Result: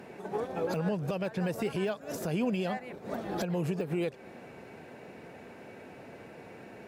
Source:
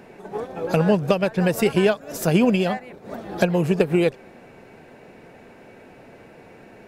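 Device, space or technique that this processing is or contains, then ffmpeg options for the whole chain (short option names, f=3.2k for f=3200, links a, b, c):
podcast mastering chain: -af "highpass=65,deesser=0.7,acompressor=threshold=-27dB:ratio=2,alimiter=limit=-20dB:level=0:latency=1:release=64,volume=-1.5dB" -ar 44100 -c:a libmp3lame -b:a 112k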